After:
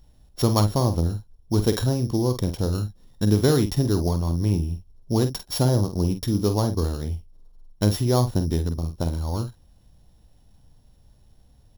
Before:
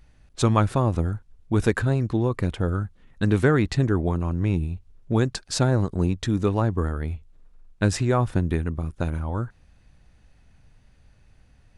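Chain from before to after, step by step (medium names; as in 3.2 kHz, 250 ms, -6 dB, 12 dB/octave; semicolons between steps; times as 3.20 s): sorted samples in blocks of 8 samples; high-order bell 1.8 kHz -8.5 dB 1.3 oct; doubling 48 ms -9 dB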